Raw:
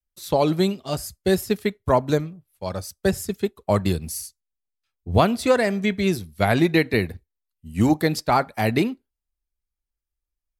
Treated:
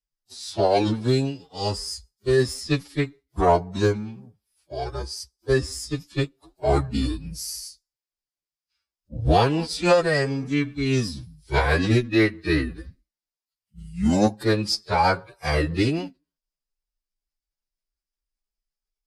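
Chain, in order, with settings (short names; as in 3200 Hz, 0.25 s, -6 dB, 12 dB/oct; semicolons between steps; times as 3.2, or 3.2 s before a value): added harmonics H 6 -41 dB, 7 -44 dB, 8 -32 dB, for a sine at -2.5 dBFS; formant-preserving pitch shift -6.5 st; thirty-one-band EQ 250 Hz -4 dB, 5000 Hz +10 dB, 12500 Hz -7 dB; time stretch by phase-locked vocoder 1.8×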